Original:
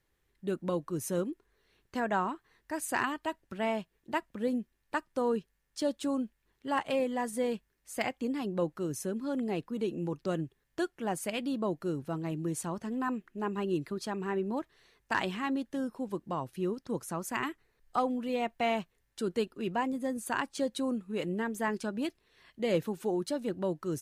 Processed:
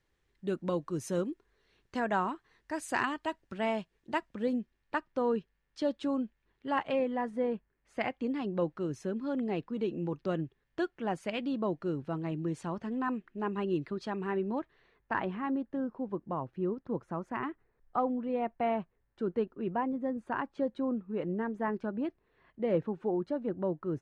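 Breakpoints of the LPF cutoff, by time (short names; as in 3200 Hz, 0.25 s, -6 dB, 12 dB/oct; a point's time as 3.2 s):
4.17 s 6800 Hz
5.08 s 3500 Hz
6.73 s 3500 Hz
7.53 s 1500 Hz
8.28 s 3500 Hz
14.45 s 3500 Hz
15.25 s 1400 Hz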